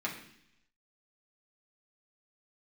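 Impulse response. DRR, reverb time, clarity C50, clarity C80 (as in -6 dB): -3.5 dB, 0.70 s, 7.5 dB, 10.5 dB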